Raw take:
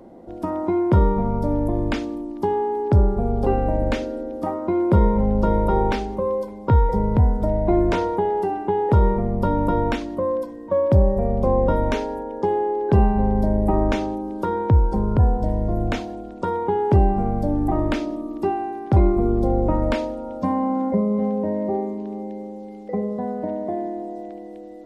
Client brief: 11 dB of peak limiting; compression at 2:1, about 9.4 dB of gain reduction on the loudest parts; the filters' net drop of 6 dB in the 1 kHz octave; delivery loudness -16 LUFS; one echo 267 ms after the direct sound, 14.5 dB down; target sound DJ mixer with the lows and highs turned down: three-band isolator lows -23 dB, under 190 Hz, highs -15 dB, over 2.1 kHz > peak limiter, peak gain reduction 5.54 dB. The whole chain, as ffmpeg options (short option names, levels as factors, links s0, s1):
-filter_complex "[0:a]equalizer=f=1000:t=o:g=-7.5,acompressor=threshold=0.0355:ratio=2,alimiter=level_in=1.19:limit=0.0631:level=0:latency=1,volume=0.841,acrossover=split=190 2100:gain=0.0708 1 0.178[s0][s1][s2];[s0][s1][s2]amix=inputs=3:normalize=0,aecho=1:1:267:0.188,volume=11.9,alimiter=limit=0.398:level=0:latency=1"